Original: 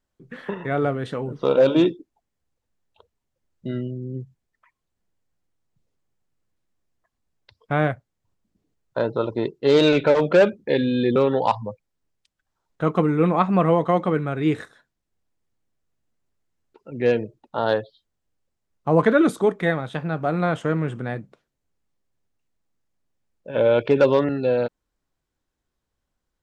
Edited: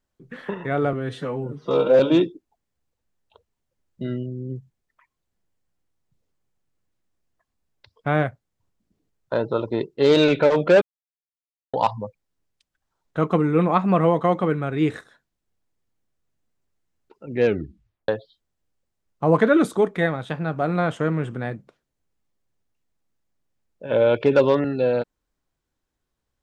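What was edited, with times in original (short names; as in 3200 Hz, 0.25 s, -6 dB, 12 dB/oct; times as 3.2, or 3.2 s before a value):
0.93–1.64 stretch 1.5×
10.46–11.38 mute
17.09 tape stop 0.64 s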